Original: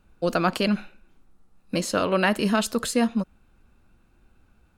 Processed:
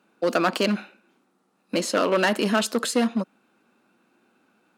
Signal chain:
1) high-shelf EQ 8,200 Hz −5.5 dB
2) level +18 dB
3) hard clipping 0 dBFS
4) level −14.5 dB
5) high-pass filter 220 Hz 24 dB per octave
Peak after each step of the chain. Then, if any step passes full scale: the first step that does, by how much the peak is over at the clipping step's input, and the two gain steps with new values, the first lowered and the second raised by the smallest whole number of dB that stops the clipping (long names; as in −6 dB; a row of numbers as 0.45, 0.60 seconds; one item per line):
−8.0, +10.0, 0.0, −14.5, −8.0 dBFS
step 2, 10.0 dB
step 2 +8 dB, step 4 −4.5 dB